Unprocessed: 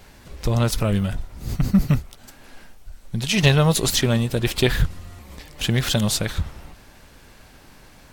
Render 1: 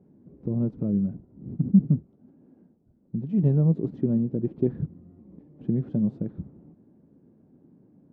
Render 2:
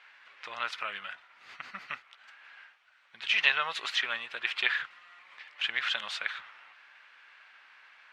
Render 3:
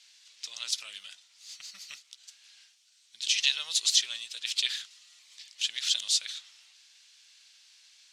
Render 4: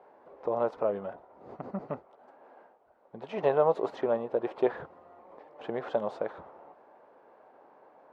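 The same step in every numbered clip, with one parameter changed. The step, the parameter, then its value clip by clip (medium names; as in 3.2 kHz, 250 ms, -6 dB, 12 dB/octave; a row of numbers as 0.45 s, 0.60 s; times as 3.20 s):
Butterworth band-pass, frequency: 230 Hz, 1.9 kHz, 4.8 kHz, 650 Hz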